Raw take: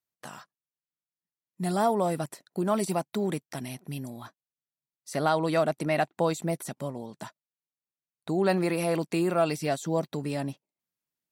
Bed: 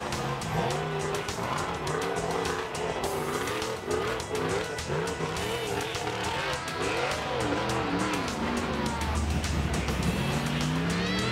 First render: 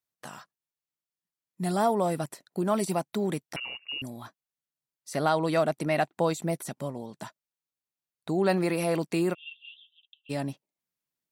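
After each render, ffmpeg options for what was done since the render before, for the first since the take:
ffmpeg -i in.wav -filter_complex "[0:a]asettb=1/sr,asplit=3[link_01][link_02][link_03];[link_01]atrim=end=3.564[link_04];[link_02]atrim=start=3.56:end=4.02,asetpts=PTS-STARTPTS,afade=type=in:duration=0.004:curve=qsin,afade=type=out:start_time=0.456:duration=0.004:curve=qsin,lowpass=frequency=2600:width_type=q:width=0.5098,lowpass=frequency=2600:width_type=q:width=0.6013,lowpass=frequency=2600:width_type=q:width=0.9,lowpass=frequency=2600:width_type=q:width=2.563,afreqshift=-3000[link_05];[link_03]atrim=start=4.016[link_06];[link_04][link_05]acrossfade=duration=0.004:curve1=hsin:curve2=qsin[link_07];[link_07][link_06]acrossfade=duration=0.004:curve1=qsin:curve2=hsin,asplit=3[link_08][link_09][link_10];[link_08]afade=type=out:start_time=9.33:duration=0.02[link_11];[link_09]asuperpass=centerf=3100:order=12:qfactor=3.4,afade=type=in:start_time=9.33:duration=0.02,afade=type=out:start_time=10.29:duration=0.02[link_12];[link_10]afade=type=in:start_time=10.29:duration=0.02[link_13];[link_11][link_12][link_13]amix=inputs=3:normalize=0" out.wav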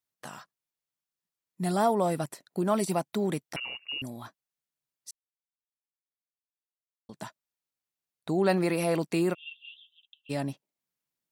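ffmpeg -i in.wav -filter_complex "[0:a]asplit=3[link_01][link_02][link_03];[link_01]atrim=end=5.11,asetpts=PTS-STARTPTS,afade=type=out:start_time=5.106:duration=0.004:curve=hsin[link_04];[link_02]atrim=start=5.11:end=7.09,asetpts=PTS-STARTPTS,volume=0[link_05];[link_03]atrim=start=7.09,asetpts=PTS-STARTPTS,afade=type=in:duration=0.004:curve=hsin[link_06];[link_04][link_05][link_06]concat=n=3:v=0:a=1" out.wav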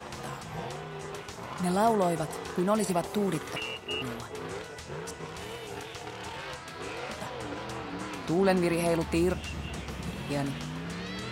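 ffmpeg -i in.wav -i bed.wav -filter_complex "[1:a]volume=-9dB[link_01];[0:a][link_01]amix=inputs=2:normalize=0" out.wav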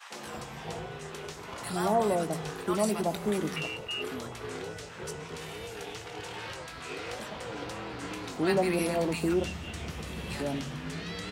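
ffmpeg -i in.wav -filter_complex "[0:a]asplit=2[link_01][link_02];[link_02]adelay=19,volume=-11dB[link_03];[link_01][link_03]amix=inputs=2:normalize=0,acrossover=split=160|990[link_04][link_05][link_06];[link_05]adelay=100[link_07];[link_04]adelay=240[link_08];[link_08][link_07][link_06]amix=inputs=3:normalize=0" out.wav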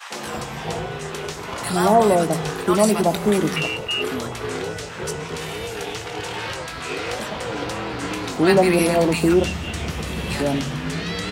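ffmpeg -i in.wav -af "volume=11dB" out.wav

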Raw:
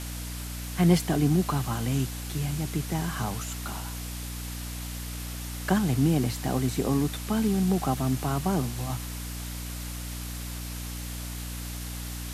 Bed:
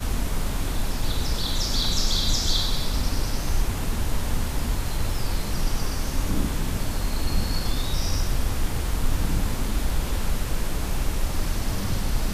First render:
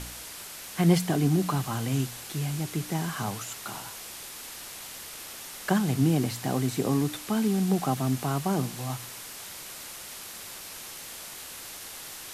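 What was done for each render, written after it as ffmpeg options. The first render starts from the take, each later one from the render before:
ffmpeg -i in.wav -af "bandreject=frequency=60:width_type=h:width=4,bandreject=frequency=120:width_type=h:width=4,bandreject=frequency=180:width_type=h:width=4,bandreject=frequency=240:width_type=h:width=4,bandreject=frequency=300:width_type=h:width=4" out.wav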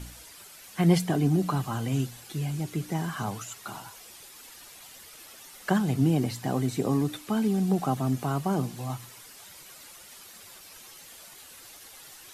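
ffmpeg -i in.wav -af "afftdn=noise_reduction=10:noise_floor=-42" out.wav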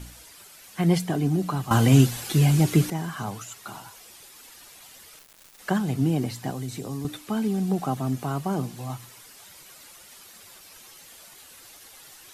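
ffmpeg -i in.wav -filter_complex "[0:a]asettb=1/sr,asplit=3[link_01][link_02][link_03];[link_01]atrim=end=5.194[link_04];[link_02]atrim=start=5.19:end=5.59,asetpts=PTS-STARTPTS,afade=type=in:duration=0.004:curve=qsin,afade=type=out:start_time=0.396:duration=0.004:curve=qsin,acrusher=bits=4:dc=4:mix=0:aa=0.000001[link_05];[link_03]atrim=start=5.586[link_06];[link_04][link_05]acrossfade=duration=0.004:curve1=hsin:curve2=qsin[link_07];[link_07][link_06]acrossfade=duration=0.004:curve1=qsin:curve2=hsin,asettb=1/sr,asplit=3[link_08][link_09][link_10];[link_08]atrim=end=6.504[link_11];[link_09]atrim=start=6.5:end=7.05,asetpts=PTS-STARTPTS,afade=type=in:duration=0.004:curve=qsin,afade=type=out:start_time=0.546:duration=0.004:curve=qsin,acrossover=split=120|3000[link_12][link_13][link_14];[link_13]acompressor=threshold=-32dB:ratio=6:attack=3.2:release=140:knee=2.83:detection=peak[link_15];[link_12][link_15][link_14]amix=inputs=3:normalize=0[link_16];[link_10]atrim=start=7.046[link_17];[link_11][link_16]acrossfade=duration=0.004:curve1=hsin:curve2=qsin[link_18];[link_18][link_17]acrossfade=duration=0.004:curve1=qsin:curve2=hsin,asplit=3[link_19][link_20][link_21];[link_19]atrim=end=1.712[link_22];[link_20]atrim=start=1.708:end=2.902,asetpts=PTS-STARTPTS,volume=12dB[link_23];[link_21]atrim=start=2.898[link_24];[link_22][link_23]acrossfade=duration=0.004:curve1=hsin:curve2=hsin[link_25];[link_25][link_24]acrossfade=duration=0.004:curve1=hsin:curve2=hsin" out.wav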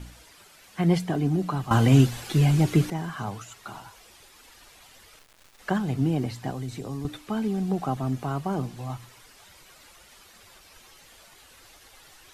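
ffmpeg -i in.wav -af "lowpass=frequency=3800:poles=1,asubboost=boost=2.5:cutoff=87" out.wav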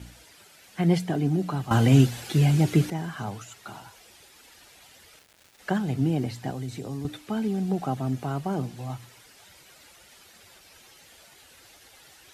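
ffmpeg -i in.wav -af "highpass=62,equalizer=frequency=1100:width_type=o:width=0.38:gain=-5.5" out.wav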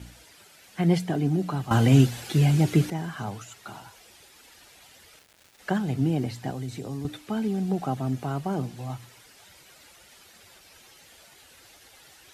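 ffmpeg -i in.wav -af anull out.wav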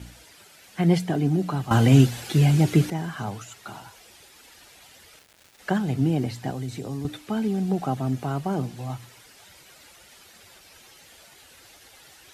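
ffmpeg -i in.wav -af "volume=2dB" out.wav

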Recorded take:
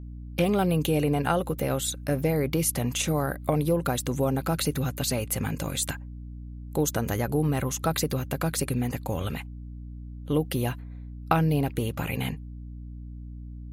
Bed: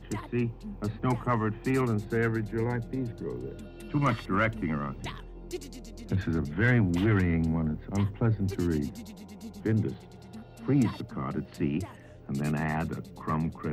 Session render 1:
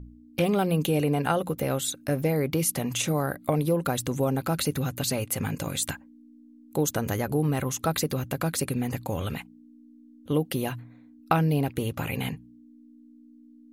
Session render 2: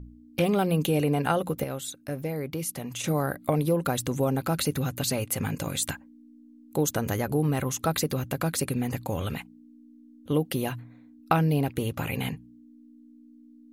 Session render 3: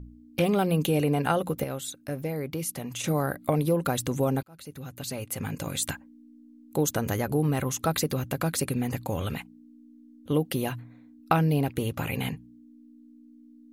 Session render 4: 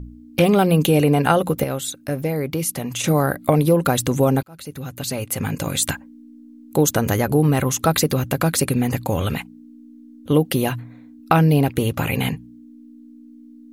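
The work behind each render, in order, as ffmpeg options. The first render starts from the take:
ffmpeg -i in.wav -af "bandreject=frequency=60:width_type=h:width=4,bandreject=frequency=120:width_type=h:width=4,bandreject=frequency=180:width_type=h:width=4" out.wav
ffmpeg -i in.wav -filter_complex "[0:a]asplit=3[link_01][link_02][link_03];[link_01]atrim=end=1.642[link_04];[link_02]atrim=start=1.638:end=3.042,asetpts=PTS-STARTPTS,volume=-6.5dB[link_05];[link_03]atrim=start=3.038[link_06];[link_04][link_05]acrossfade=duration=0.004:curve1=hsin:curve2=hsin[link_07];[link_07][link_06]acrossfade=duration=0.004:curve1=hsin:curve2=hsin" out.wav
ffmpeg -i in.wav -filter_complex "[0:a]asplit=2[link_01][link_02];[link_01]atrim=end=4.43,asetpts=PTS-STARTPTS,afade=type=out:start_time=4.426:duration=0.004:curve=hsin[link_03];[link_02]atrim=start=4.43,asetpts=PTS-STARTPTS,afade=type=in:duration=1.5[link_04];[link_03][link_04]concat=n=2:v=0:a=1" out.wav
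ffmpeg -i in.wav -af "volume=8.5dB,alimiter=limit=-1dB:level=0:latency=1" out.wav

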